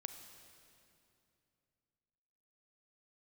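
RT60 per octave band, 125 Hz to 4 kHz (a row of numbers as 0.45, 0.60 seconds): 3.4, 3.2, 2.8, 2.6, 2.4, 2.3 seconds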